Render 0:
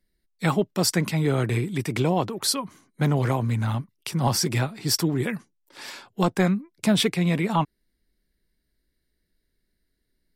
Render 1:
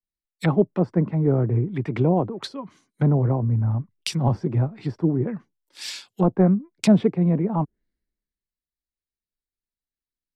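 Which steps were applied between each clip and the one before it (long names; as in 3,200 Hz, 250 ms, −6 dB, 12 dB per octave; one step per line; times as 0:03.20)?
treble cut that deepens with the level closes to 670 Hz, closed at −21 dBFS
multiband upward and downward expander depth 70%
level +3 dB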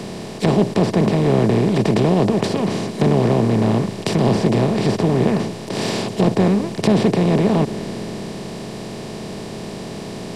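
compressor on every frequency bin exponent 0.2
level −3.5 dB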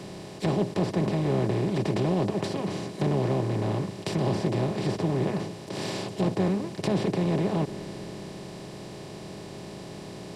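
notch comb filter 230 Hz
level −8.5 dB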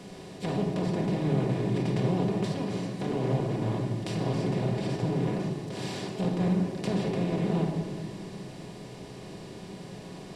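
rectangular room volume 1,200 cubic metres, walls mixed, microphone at 1.8 metres
level −6 dB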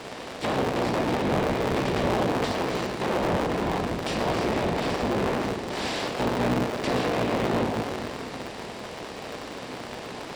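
sub-harmonics by changed cycles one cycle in 3, inverted
mid-hump overdrive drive 17 dB, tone 3,700 Hz, clips at −14 dBFS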